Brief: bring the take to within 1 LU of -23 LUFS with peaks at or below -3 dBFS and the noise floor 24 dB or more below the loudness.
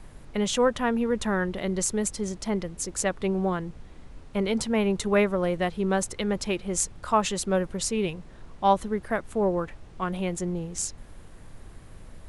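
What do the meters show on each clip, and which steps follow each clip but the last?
noise floor -47 dBFS; noise floor target -51 dBFS; loudness -27.0 LUFS; peak level -7.5 dBFS; loudness target -23.0 LUFS
-> noise print and reduce 6 dB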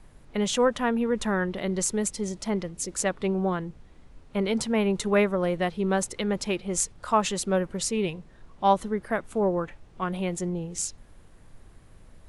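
noise floor -52 dBFS; loudness -27.0 LUFS; peak level -7.5 dBFS; loudness target -23.0 LUFS
-> trim +4 dB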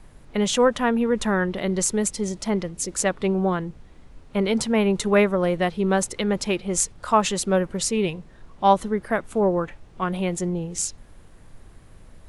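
loudness -23.0 LUFS; peak level -3.5 dBFS; noise floor -48 dBFS

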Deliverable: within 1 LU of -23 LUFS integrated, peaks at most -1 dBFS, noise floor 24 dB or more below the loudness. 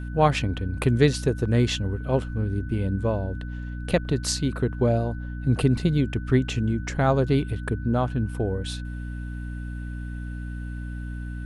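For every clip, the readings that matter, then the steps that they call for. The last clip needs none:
hum 60 Hz; highest harmonic 300 Hz; hum level -30 dBFS; steady tone 1.5 kHz; tone level -45 dBFS; loudness -26.0 LUFS; peak level -6.0 dBFS; loudness target -23.0 LUFS
-> de-hum 60 Hz, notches 5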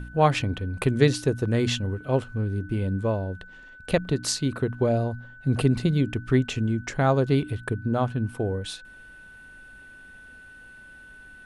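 hum not found; steady tone 1.5 kHz; tone level -45 dBFS
-> band-stop 1.5 kHz, Q 30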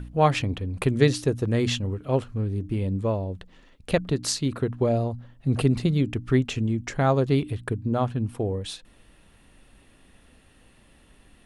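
steady tone not found; loudness -25.5 LUFS; peak level -6.0 dBFS; loudness target -23.0 LUFS
-> trim +2.5 dB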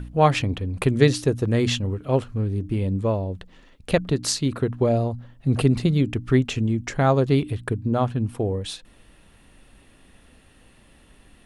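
loudness -23.0 LUFS; peak level -3.5 dBFS; noise floor -54 dBFS

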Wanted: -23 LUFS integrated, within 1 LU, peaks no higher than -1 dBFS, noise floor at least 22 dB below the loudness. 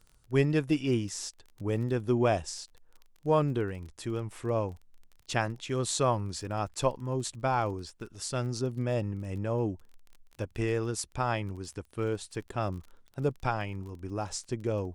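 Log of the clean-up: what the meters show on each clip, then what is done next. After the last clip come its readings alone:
tick rate 24 per s; loudness -32.0 LUFS; peak level -12.5 dBFS; loudness target -23.0 LUFS
-> de-click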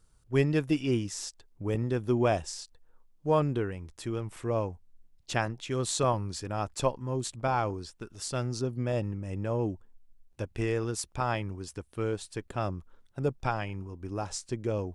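tick rate 0 per s; loudness -32.0 LUFS; peak level -12.5 dBFS; loudness target -23.0 LUFS
-> trim +9 dB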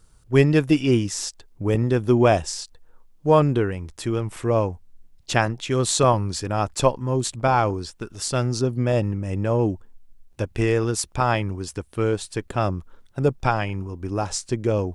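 loudness -23.0 LUFS; peak level -3.5 dBFS; noise floor -54 dBFS

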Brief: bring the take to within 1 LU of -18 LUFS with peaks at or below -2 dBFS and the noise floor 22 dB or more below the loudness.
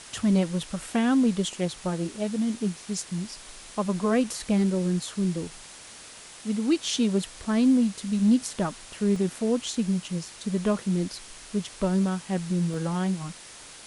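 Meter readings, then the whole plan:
dropouts 2; longest dropout 1.2 ms; noise floor -46 dBFS; noise floor target -49 dBFS; loudness -26.5 LUFS; peak level -12.0 dBFS; loudness target -18.0 LUFS
-> interpolate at 9.16/12.74 s, 1.2 ms; noise reduction 6 dB, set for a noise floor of -46 dBFS; trim +8.5 dB

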